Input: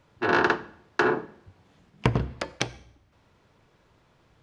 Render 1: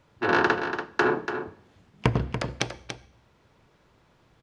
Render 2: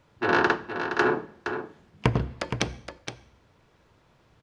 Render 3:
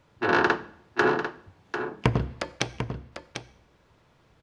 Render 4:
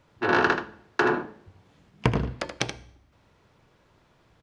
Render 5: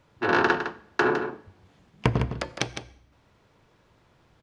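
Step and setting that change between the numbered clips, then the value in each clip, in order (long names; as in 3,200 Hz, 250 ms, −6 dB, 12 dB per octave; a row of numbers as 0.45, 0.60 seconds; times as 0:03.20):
single-tap delay, delay time: 287, 468, 746, 79, 158 milliseconds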